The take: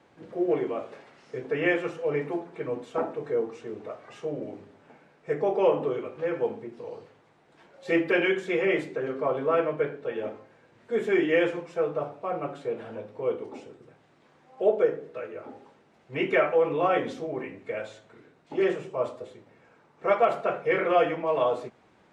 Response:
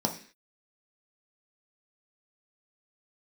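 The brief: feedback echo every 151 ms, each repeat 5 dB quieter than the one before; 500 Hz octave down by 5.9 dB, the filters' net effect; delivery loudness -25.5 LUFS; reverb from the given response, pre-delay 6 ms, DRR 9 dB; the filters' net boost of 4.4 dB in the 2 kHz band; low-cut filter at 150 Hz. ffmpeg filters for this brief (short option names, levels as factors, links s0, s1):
-filter_complex "[0:a]highpass=150,equalizer=f=500:t=o:g=-7.5,equalizer=f=2000:t=o:g=5.5,aecho=1:1:151|302|453|604|755|906|1057:0.562|0.315|0.176|0.0988|0.0553|0.031|0.0173,asplit=2[s0][s1];[1:a]atrim=start_sample=2205,adelay=6[s2];[s1][s2]afir=irnorm=-1:irlink=0,volume=0.141[s3];[s0][s3]amix=inputs=2:normalize=0,volume=1.33"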